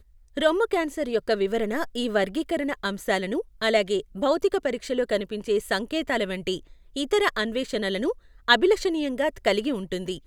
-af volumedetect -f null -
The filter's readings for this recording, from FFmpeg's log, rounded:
mean_volume: -25.5 dB
max_volume: -3.4 dB